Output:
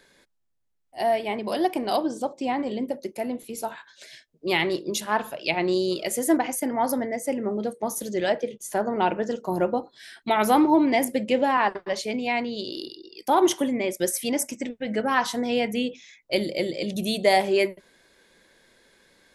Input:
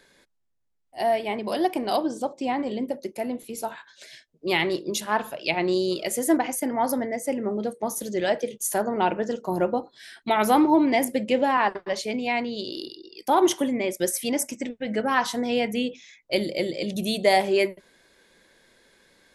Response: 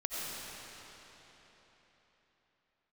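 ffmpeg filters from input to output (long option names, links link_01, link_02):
-filter_complex "[0:a]asettb=1/sr,asplit=3[link_01][link_02][link_03];[link_01]atrim=end=8.324[link_04];[link_02]atrim=start=8.32:end=8.87,asetpts=PTS-STARTPTS,afade=type=in:duration=0.004:curve=qsin,afade=type=out:start_time=0.546:duration=0.004:curve=qsin,aemphasis=mode=reproduction:type=50kf[link_05];[link_03]atrim=start=8.866[link_06];[link_04][link_05]acrossfade=duration=0.004:curve1=hsin:curve2=qsin[link_07];[link_07][link_06]acrossfade=duration=0.004:curve1=qsin:curve2=hsin"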